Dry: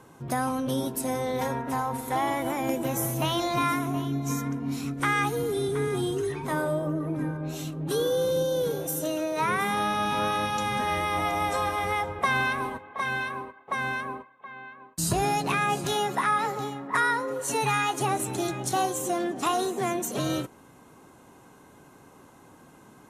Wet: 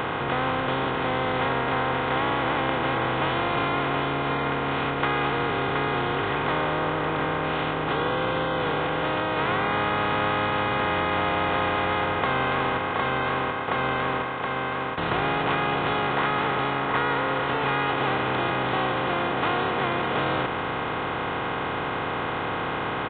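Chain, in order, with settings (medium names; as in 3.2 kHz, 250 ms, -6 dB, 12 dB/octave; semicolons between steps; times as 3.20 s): spectral levelling over time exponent 0.2; resampled via 8 kHz; trim -8 dB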